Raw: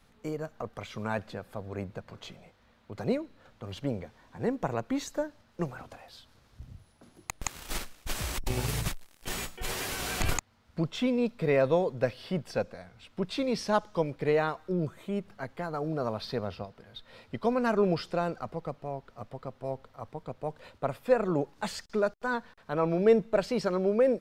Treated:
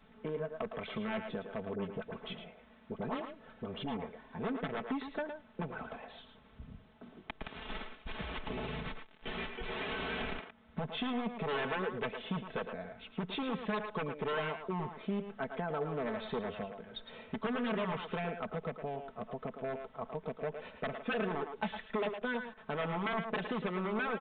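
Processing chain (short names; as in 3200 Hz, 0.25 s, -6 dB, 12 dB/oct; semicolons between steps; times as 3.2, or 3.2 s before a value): low shelf 490 Hz +4.5 dB; wavefolder -23.5 dBFS; 1.75–3.97 dispersion highs, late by 45 ms, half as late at 890 Hz; compressor, threshold -34 dBFS, peak gain reduction 8 dB; low shelf 100 Hz -10 dB; speakerphone echo 0.11 s, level -6 dB; downsampling 8000 Hz; comb 4.6 ms, depth 62%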